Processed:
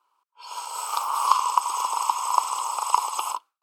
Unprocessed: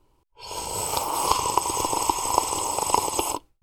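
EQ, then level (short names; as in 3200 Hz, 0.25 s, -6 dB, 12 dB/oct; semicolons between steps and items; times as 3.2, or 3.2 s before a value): resonant high-pass 1200 Hz, resonance Q 4.3; bell 1900 Hz -8 dB 0.47 oct; high shelf 5000 Hz -4.5 dB; -2.5 dB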